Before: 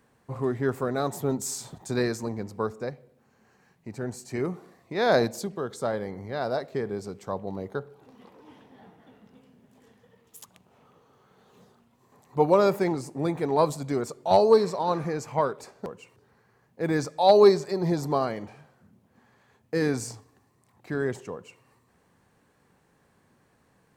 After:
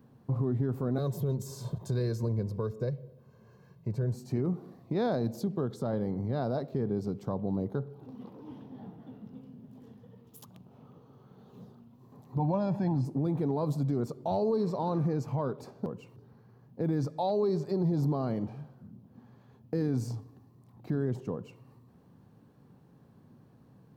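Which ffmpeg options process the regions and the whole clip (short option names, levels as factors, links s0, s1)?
-filter_complex "[0:a]asettb=1/sr,asplit=3[s0][s1][s2];[s0]atrim=end=0.984[s3];[s1]atrim=start=0.98:end=4.14,asetpts=PTS-STARTPTS,afade=t=in:d=0.004:c=qsin,afade=t=out:st=3.156:d=0.004:c=qsin,aecho=1:1:1.9:0.71,atrim=end_sample=139356,acrossover=split=600|1500[s4][s5][s6];[s4]acompressor=threshold=0.0316:ratio=4[s7];[s5]acompressor=threshold=0.00398:ratio=4[s8];[s6]acompressor=threshold=0.0158:ratio=4[s9];[s7][s8][s9]amix=inputs=3:normalize=0[s10];[s2]atrim=start=4.136[s11];[s3][s10]acrossfade=d=0.004:c1=hsin:c2=qsin[s12];[s12][s11]acrossfade=d=0.004:c1=qsin:c2=hsin,asettb=1/sr,asplit=3[s13][s14][s15];[s13]atrim=end=12.394[s16];[s14]atrim=start=12.39:end=13.05,asetpts=PTS-STARTPTS,afade=t=in:d=0.004:c=qsin,afade=t=out:st=0.656:d=0.004:c=qsin,lowpass=5000,aecho=1:1:1.2:0.79,atrim=end_sample=29106[s17];[s15]atrim=start=13.046[s18];[s16][s17]acrossfade=d=0.004:c1=hsin:c2=qsin[s19];[s19][s18]acrossfade=d=0.004:c1=qsin:c2=hsin,equalizer=f=125:t=o:w=1:g=11,equalizer=f=250:t=o:w=1:g=7,equalizer=f=2000:t=o:w=1:g=-10,equalizer=f=8000:t=o:w=1:g=-12,acompressor=threshold=0.0251:ratio=1.5,alimiter=limit=0.0841:level=0:latency=1"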